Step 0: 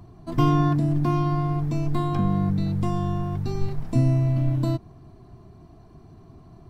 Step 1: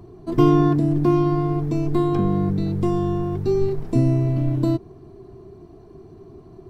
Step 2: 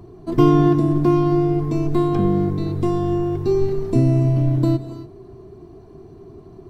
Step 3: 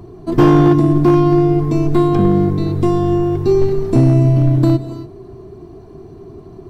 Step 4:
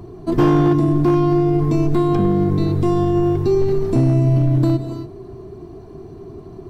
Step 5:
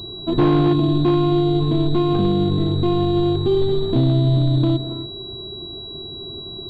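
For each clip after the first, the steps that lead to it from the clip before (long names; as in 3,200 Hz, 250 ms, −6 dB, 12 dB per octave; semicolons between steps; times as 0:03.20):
parametric band 390 Hz +14.5 dB 0.59 octaves
reverb whose tail is shaped and stops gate 310 ms rising, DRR 10.5 dB; level +1.5 dB
gain into a clipping stage and back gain 10 dB; level +5.5 dB
brickwall limiter −9 dBFS, peak gain reduction 4.5 dB
switching amplifier with a slow clock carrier 3,900 Hz; level −1.5 dB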